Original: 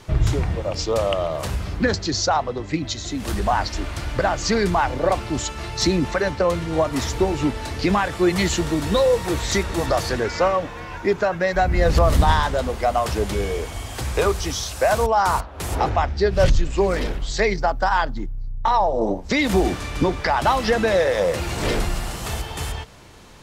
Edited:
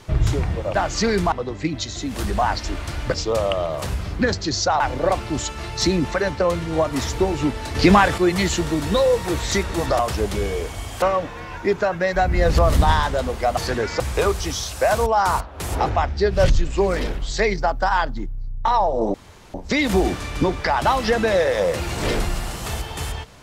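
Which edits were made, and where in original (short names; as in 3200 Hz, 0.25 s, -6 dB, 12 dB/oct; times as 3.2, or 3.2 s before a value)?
0.75–2.41 swap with 4.23–4.8
7.75–8.18 gain +6.5 dB
9.99–10.42 swap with 12.97–14
19.14 insert room tone 0.40 s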